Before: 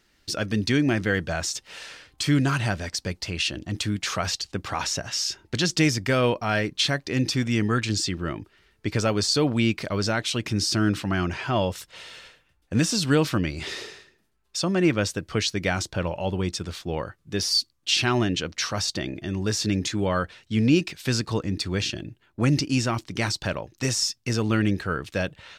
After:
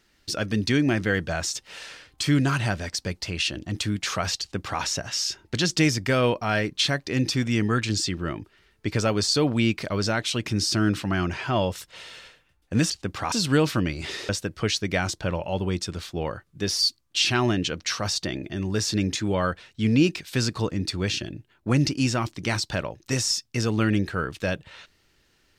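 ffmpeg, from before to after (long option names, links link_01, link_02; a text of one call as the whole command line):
ffmpeg -i in.wav -filter_complex "[0:a]asplit=4[link_01][link_02][link_03][link_04];[link_01]atrim=end=12.902[link_05];[link_02]atrim=start=4.398:end=4.822[link_06];[link_03]atrim=start=12.898:end=13.872[link_07];[link_04]atrim=start=15.008[link_08];[link_05][link_06]acrossfade=duration=0.004:curve1=hsin:curve2=hsin[link_09];[link_09][link_07]acrossfade=duration=0.004:curve1=hsin:curve2=hsin[link_10];[link_10][link_08]acrossfade=duration=0.004:curve1=hsin:curve2=hsin" out.wav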